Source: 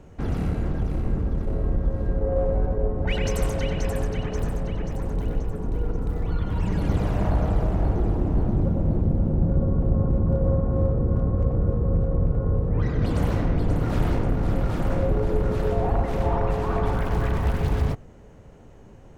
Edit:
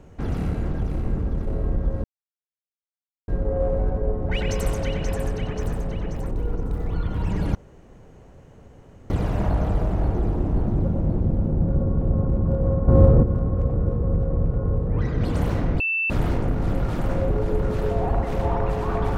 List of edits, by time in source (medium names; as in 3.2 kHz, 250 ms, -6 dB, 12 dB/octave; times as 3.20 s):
2.04 s: insert silence 1.24 s
5.07–5.67 s: delete
6.91 s: insert room tone 1.55 s
10.69–11.04 s: gain +8.5 dB
13.61–13.91 s: bleep 2.66 kHz -20.5 dBFS